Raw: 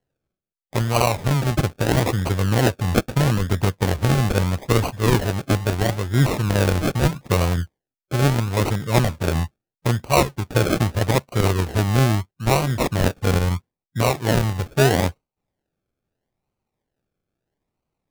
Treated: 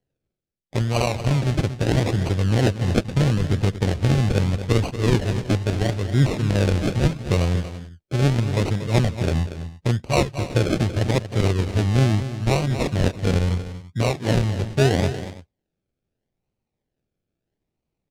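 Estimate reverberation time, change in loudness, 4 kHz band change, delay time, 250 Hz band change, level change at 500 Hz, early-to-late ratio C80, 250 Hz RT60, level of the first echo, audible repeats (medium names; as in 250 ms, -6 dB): no reverb, -1.0 dB, -2.0 dB, 235 ms, 0.0 dB, -2.0 dB, no reverb, no reverb, -11.5 dB, 2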